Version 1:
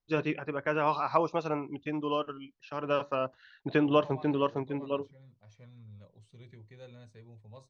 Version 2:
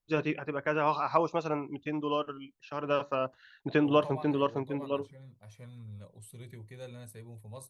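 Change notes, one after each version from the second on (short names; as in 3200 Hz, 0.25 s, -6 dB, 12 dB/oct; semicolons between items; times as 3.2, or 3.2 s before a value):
second voice +5.0 dB; master: remove steep low-pass 6400 Hz 36 dB/oct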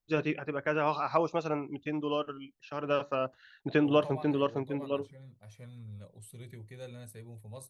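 master: add bell 1000 Hz -5 dB 0.27 oct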